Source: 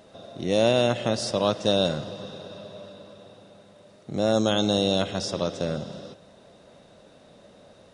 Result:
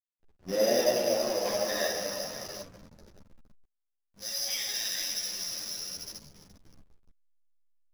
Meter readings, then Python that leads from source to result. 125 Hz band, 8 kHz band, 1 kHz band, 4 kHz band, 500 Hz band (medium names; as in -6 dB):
-19.5 dB, +6.0 dB, -7.5 dB, -4.0 dB, -5.5 dB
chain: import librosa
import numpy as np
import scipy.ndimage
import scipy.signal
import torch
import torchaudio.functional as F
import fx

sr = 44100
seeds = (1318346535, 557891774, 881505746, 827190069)

p1 = x + fx.echo_diffused(x, sr, ms=561, feedback_pct=57, wet_db=-16, dry=0)
p2 = fx.env_flanger(p1, sr, rest_ms=2.9, full_db=-19.0)
p3 = fx.room_shoebox(p2, sr, seeds[0], volume_m3=180.0, walls='hard', distance_m=1.0)
p4 = (np.kron(p3[::8], np.eye(8)[0]) * 8)[:len(p3)]
p5 = fx.filter_sweep_highpass(p4, sr, from_hz=290.0, to_hz=3100.0, start_s=0.22, end_s=4.13, q=0.99)
p6 = fx.high_shelf(p5, sr, hz=2300.0, db=-7.5)
p7 = fx.level_steps(p6, sr, step_db=23)
p8 = p6 + (p7 * 10.0 ** (-1.5 / 20.0))
p9 = scipy.signal.lfilter(np.full(5, 1.0 / 5), 1.0, p8)
p10 = fx.backlash(p9, sr, play_db=-23.0)
p11 = fx.ensemble(p10, sr)
y = p11 * 10.0 ** (-8.5 / 20.0)